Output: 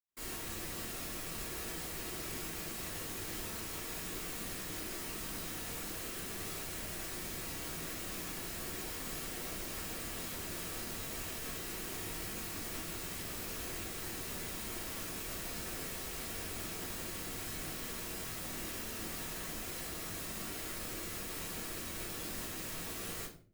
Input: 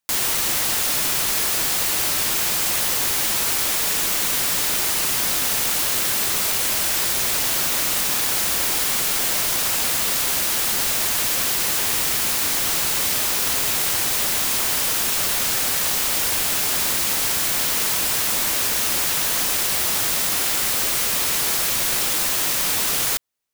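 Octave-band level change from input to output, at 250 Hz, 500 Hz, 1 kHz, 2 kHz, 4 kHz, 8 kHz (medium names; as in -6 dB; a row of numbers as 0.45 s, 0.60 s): -9.5 dB, -13.5 dB, -18.5 dB, -19.0 dB, -22.0 dB, -22.0 dB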